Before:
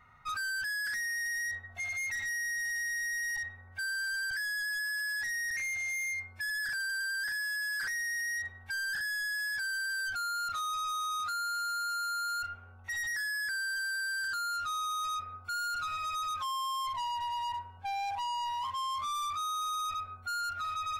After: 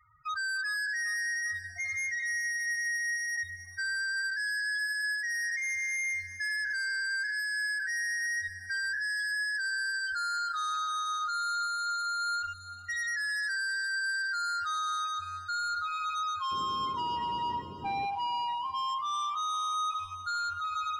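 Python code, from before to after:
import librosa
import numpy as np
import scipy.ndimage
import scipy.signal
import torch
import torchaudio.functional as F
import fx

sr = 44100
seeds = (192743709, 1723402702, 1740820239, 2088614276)

p1 = fx.cheby_harmonics(x, sr, harmonics=(4,), levels_db=(-19,), full_scale_db=-33.0)
p2 = fx.spec_topn(p1, sr, count=8)
p3 = fx.backlash(p2, sr, play_db=-43.5)
p4 = p2 + F.gain(torch.from_numpy(p3), -5.5).numpy()
p5 = fx.dmg_noise_band(p4, sr, seeds[0], low_hz=62.0, high_hz=440.0, level_db=-45.0, at=(16.51, 18.05), fade=0.02)
p6 = p5 + fx.echo_single(p5, sr, ms=296, db=-21.5, dry=0)
p7 = fx.echo_crushed(p6, sr, ms=399, feedback_pct=55, bits=11, wet_db=-15)
y = F.gain(torch.from_numpy(p7), -1.5).numpy()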